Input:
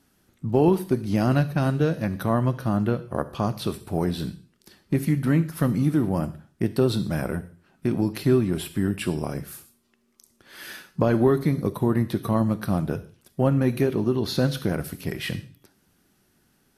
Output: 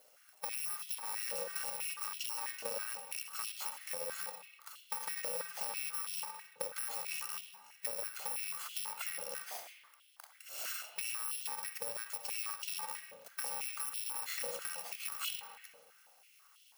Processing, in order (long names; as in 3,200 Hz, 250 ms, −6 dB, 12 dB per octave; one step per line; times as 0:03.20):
samples in bit-reversed order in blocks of 128 samples
brickwall limiter −16.5 dBFS, peak gain reduction 9.5 dB
downward compressor 8 to 1, threshold −37 dBFS, peak gain reduction 16 dB
spring reverb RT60 1.5 s, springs 51/59 ms, chirp 35 ms, DRR 5.5 dB
high-pass on a step sequencer 6.1 Hz 560–3,100 Hz